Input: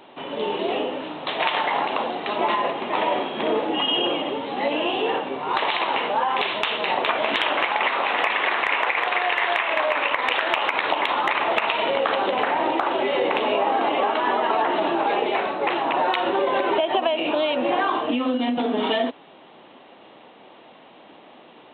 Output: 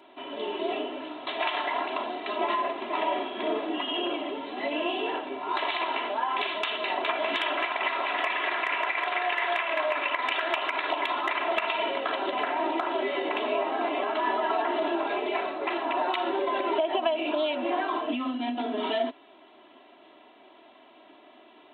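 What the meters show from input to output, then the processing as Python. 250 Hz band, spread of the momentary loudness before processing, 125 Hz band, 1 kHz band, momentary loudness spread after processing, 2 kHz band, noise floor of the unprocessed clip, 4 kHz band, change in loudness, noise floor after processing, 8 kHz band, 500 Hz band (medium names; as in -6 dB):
-5.5 dB, 4 LU, under -15 dB, -6.5 dB, 5 LU, -6.0 dB, -48 dBFS, -7.0 dB, -6.0 dB, -54 dBFS, no reading, -5.5 dB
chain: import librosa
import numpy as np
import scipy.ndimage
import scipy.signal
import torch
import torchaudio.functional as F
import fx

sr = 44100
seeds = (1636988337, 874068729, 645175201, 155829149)

y = fx.highpass(x, sr, hz=170.0, slope=6)
y = y + 0.92 * np.pad(y, (int(3.0 * sr / 1000.0), 0))[:len(y)]
y = y * 10.0 ** (-8.5 / 20.0)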